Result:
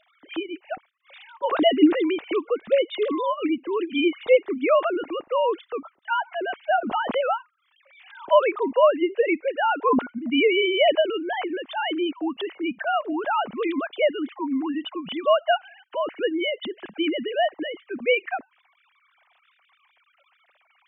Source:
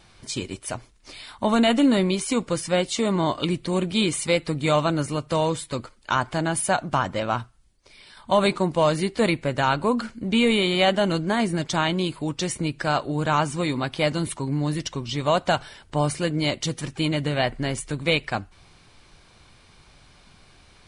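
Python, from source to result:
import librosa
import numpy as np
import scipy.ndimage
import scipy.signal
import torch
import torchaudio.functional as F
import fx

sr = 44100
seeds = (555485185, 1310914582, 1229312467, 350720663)

y = fx.sine_speech(x, sr)
y = fx.pre_swell(y, sr, db_per_s=58.0, at=(6.78, 8.31))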